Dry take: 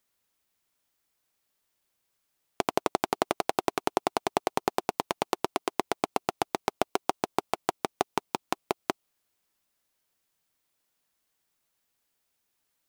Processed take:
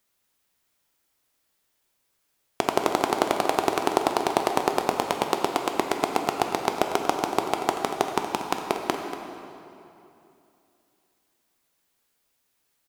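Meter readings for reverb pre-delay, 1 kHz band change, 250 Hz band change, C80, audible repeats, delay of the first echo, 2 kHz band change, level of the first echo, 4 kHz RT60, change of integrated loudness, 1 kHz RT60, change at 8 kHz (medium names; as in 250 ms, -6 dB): 8 ms, +5.0 dB, +5.5 dB, 5.0 dB, 1, 236 ms, +5.0 dB, -13.0 dB, 2.1 s, +5.0 dB, 2.8 s, +5.0 dB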